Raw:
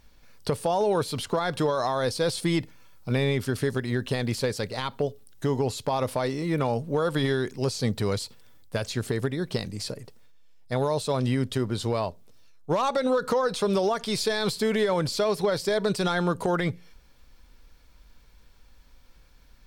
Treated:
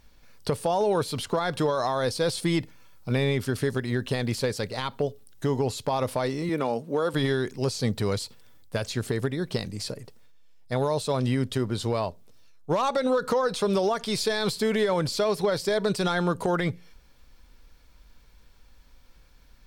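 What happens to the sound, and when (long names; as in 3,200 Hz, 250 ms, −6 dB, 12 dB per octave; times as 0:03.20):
0:06.49–0:07.14: Chebyshev high-pass filter 240 Hz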